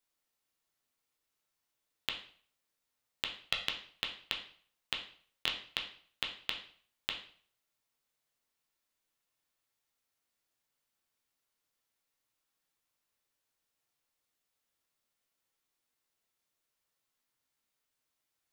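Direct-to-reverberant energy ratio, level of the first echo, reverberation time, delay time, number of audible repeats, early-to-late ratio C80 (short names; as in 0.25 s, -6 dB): 1.0 dB, none, 0.50 s, none, none, 12.5 dB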